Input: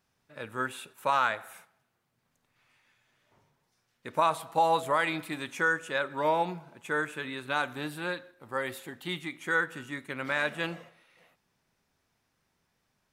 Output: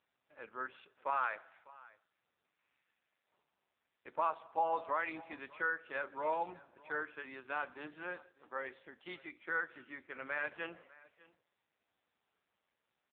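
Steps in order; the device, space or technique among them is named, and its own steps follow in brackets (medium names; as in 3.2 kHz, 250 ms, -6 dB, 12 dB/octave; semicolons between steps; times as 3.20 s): satellite phone (band-pass 330–3200 Hz; delay 600 ms -21.5 dB; trim -7.5 dB; AMR-NB 5.9 kbps 8 kHz)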